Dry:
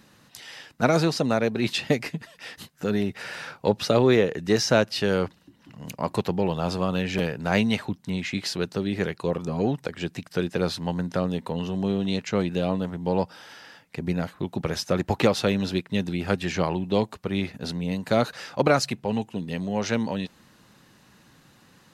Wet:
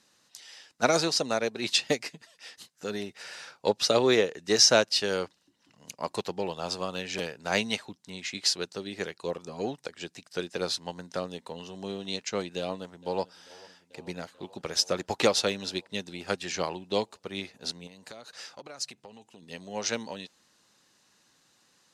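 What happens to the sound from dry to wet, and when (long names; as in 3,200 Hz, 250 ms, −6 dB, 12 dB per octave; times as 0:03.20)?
0:12.58–0:13.36: delay throw 440 ms, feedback 80%, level −16 dB
0:17.87–0:19.43: downward compressor 10 to 1, threshold −30 dBFS
whole clip: low-pass filter 7,400 Hz 12 dB per octave; bass and treble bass −11 dB, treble +13 dB; expander for the loud parts 1.5 to 1, over −38 dBFS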